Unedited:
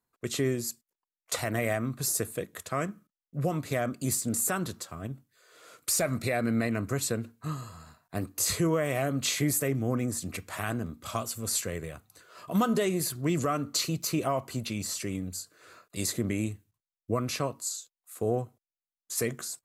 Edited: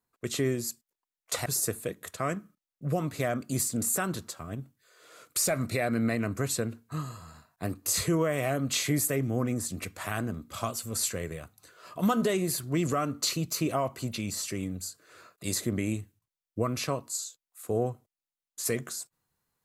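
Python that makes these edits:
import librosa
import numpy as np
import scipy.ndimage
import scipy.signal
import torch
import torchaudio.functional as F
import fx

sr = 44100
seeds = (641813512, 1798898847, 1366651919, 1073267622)

y = fx.edit(x, sr, fx.cut(start_s=1.46, length_s=0.52), tone=tone)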